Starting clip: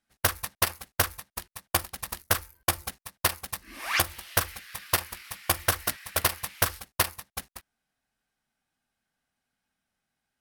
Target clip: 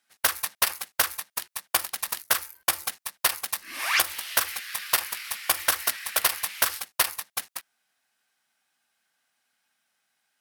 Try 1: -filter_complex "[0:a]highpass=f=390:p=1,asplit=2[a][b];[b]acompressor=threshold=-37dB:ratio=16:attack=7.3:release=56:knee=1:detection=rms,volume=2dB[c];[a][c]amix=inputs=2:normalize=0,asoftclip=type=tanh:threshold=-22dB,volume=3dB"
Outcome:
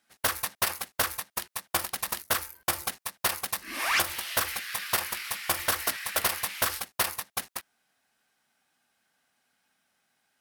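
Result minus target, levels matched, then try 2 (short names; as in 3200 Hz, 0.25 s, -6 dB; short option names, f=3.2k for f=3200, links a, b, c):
soft clip: distortion +10 dB; 500 Hz band +4.5 dB
-filter_complex "[0:a]highpass=f=1.2k:p=1,asplit=2[a][b];[b]acompressor=threshold=-37dB:ratio=16:attack=7.3:release=56:knee=1:detection=rms,volume=2dB[c];[a][c]amix=inputs=2:normalize=0,asoftclip=type=tanh:threshold=-11.5dB,volume=3dB"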